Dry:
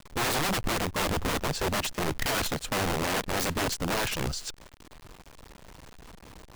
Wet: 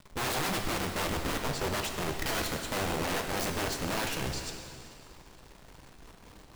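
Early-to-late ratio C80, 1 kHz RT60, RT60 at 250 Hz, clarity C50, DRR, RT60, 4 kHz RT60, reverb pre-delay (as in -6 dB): 5.5 dB, 2.5 s, 2.6 s, 4.5 dB, 3.0 dB, 2.5 s, 2.3 s, 6 ms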